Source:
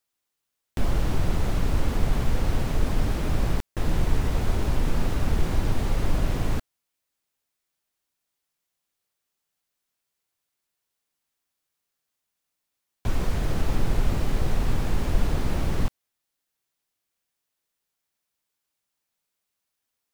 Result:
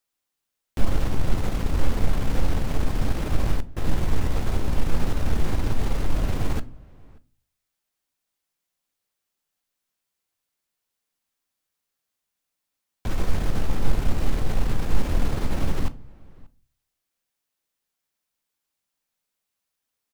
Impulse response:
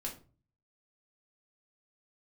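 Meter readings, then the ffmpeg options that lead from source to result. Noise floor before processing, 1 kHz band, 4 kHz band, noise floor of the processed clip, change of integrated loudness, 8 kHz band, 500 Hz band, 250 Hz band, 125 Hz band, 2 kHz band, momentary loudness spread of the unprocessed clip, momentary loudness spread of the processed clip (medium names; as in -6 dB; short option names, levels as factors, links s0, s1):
-82 dBFS, 0.0 dB, -0.5 dB, -83 dBFS, -0.5 dB, -0.5 dB, -0.5 dB, 0.0 dB, -0.5 dB, -0.5 dB, 3 LU, 4 LU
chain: -filter_complex "[0:a]asplit=2[s0][s1];[s1]adelay=583.1,volume=0.0631,highshelf=f=4000:g=-13.1[s2];[s0][s2]amix=inputs=2:normalize=0,aeval=exprs='0.376*(cos(1*acos(clip(val(0)/0.376,-1,1)))-cos(1*PI/2))+0.0211*(cos(6*acos(clip(val(0)/0.376,-1,1)))-cos(6*PI/2))':c=same,asplit=2[s3][s4];[1:a]atrim=start_sample=2205[s5];[s4][s5]afir=irnorm=-1:irlink=0,volume=0.376[s6];[s3][s6]amix=inputs=2:normalize=0,volume=0.75"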